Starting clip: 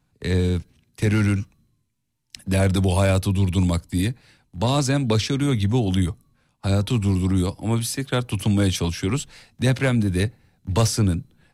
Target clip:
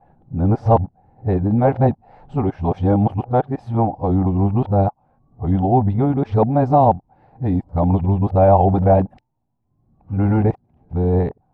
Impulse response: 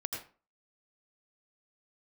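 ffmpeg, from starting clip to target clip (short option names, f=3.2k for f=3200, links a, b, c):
-af "areverse,lowpass=f=780:t=q:w=6.3,volume=2.5dB"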